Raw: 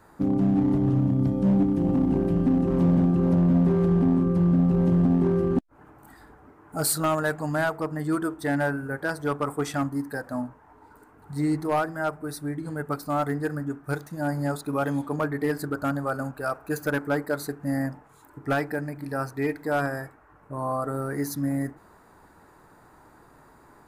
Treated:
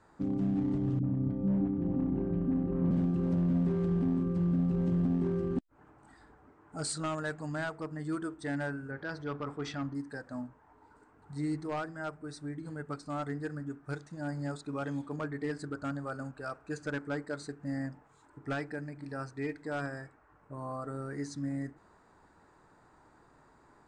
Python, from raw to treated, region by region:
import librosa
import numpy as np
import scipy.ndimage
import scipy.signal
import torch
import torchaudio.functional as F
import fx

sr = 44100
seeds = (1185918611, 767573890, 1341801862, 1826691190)

y = fx.chain(x, sr, fx.lowpass(hz=1800.0, slope=12),
    fx.dispersion(late='highs', ms=52.0, hz=430.0), at=(0.99, 2.91))
y = fx.chain(y, sr, fx.lowpass(hz=5300.0, slope=24),
    fx.transient(attack_db=-2, sustain_db=4), at=(8.91, 9.95))
y = scipy.signal.sosfilt(scipy.signal.ellip(4, 1.0, 40, 8400.0, 'lowpass', fs=sr, output='sos'), y)
y = fx.dynamic_eq(y, sr, hz=800.0, q=1.0, threshold_db=-42.0, ratio=4.0, max_db=-5)
y = y * 10.0 ** (-7.0 / 20.0)